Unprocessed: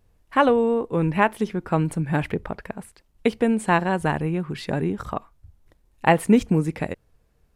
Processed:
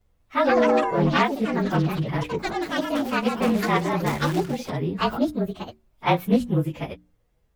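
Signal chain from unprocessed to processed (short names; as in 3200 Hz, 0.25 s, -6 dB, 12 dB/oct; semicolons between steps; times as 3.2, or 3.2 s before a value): inharmonic rescaling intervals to 110%; notches 60/120/180/240/300 Hz; 4.06–4.7 companded quantiser 4-bit; echoes that change speed 0.197 s, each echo +4 st, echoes 3; Doppler distortion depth 0.21 ms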